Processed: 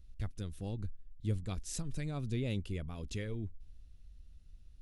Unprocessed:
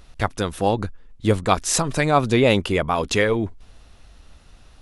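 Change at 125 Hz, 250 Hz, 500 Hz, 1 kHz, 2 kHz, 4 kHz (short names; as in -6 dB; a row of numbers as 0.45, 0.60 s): -11.5, -18.0, -25.0, -32.0, -25.5, -22.0 dB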